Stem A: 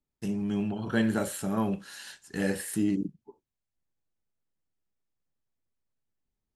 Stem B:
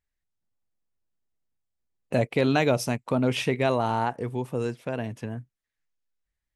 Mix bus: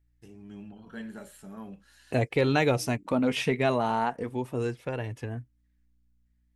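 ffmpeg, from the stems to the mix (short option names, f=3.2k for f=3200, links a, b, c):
-filter_complex "[0:a]aeval=exprs='val(0)+0.00141*(sin(2*PI*60*n/s)+sin(2*PI*2*60*n/s)/2+sin(2*PI*3*60*n/s)/3+sin(2*PI*4*60*n/s)/4+sin(2*PI*5*60*n/s)/5)':c=same,volume=-11.5dB[a];[1:a]volume=2dB,asplit=2[b][c];[c]apad=whole_len=289254[d];[a][d]sidechaincompress=threshold=-27dB:ratio=8:attack=10:release=643[e];[e][b]amix=inputs=2:normalize=0,lowshelf=f=61:g=8.5,flanger=delay=2.2:depth=2.6:regen=-44:speed=0.4:shape=sinusoidal,equalizer=f=1.9k:t=o:w=0.77:g=2.5"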